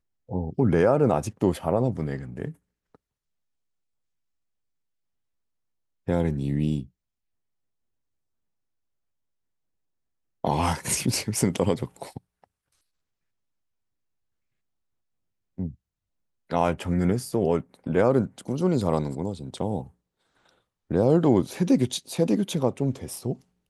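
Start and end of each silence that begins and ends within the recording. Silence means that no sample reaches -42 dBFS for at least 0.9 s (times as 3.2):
2.95–6.08
6.85–10.44
12.44–15.58
19.87–20.91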